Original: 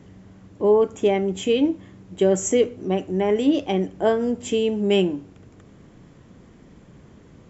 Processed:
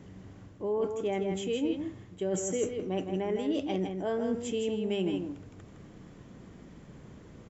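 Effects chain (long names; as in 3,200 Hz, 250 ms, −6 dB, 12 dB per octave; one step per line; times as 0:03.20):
reversed playback
downward compressor 6 to 1, threshold −26 dBFS, peak gain reduction 12.5 dB
reversed playback
single-tap delay 161 ms −6 dB
level −2.5 dB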